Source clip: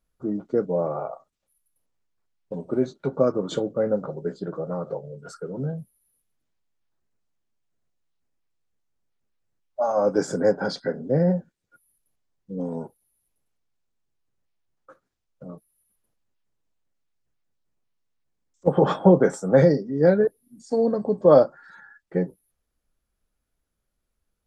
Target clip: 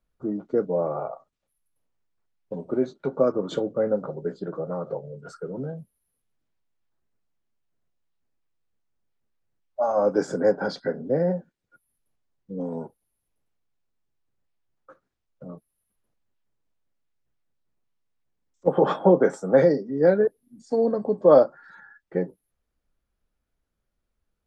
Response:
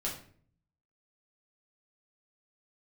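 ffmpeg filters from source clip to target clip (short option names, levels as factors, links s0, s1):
-filter_complex "[0:a]highshelf=f=6000:g=-11,acrossover=split=200[s0][s1];[s0]acompressor=threshold=0.01:ratio=6[s2];[s2][s1]amix=inputs=2:normalize=0"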